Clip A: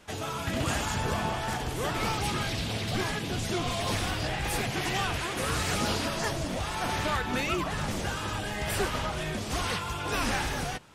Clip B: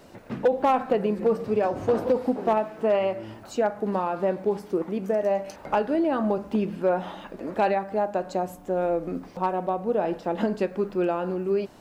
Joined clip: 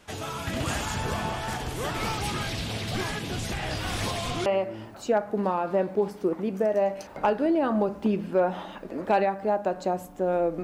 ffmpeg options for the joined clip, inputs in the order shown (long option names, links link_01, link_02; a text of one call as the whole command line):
ffmpeg -i cue0.wav -i cue1.wav -filter_complex "[0:a]apad=whole_dur=10.63,atrim=end=10.63,asplit=2[link_01][link_02];[link_01]atrim=end=3.522[link_03];[link_02]atrim=start=3.518:end=4.462,asetpts=PTS-STARTPTS,areverse[link_04];[1:a]atrim=start=2.948:end=9.12[link_05];[link_03][link_04]acrossfade=duration=0.004:curve1=hsin:curve2=hsin[link_06];[link_06][link_05]acrossfade=duration=0.004:curve1=hsin:curve2=hsin" out.wav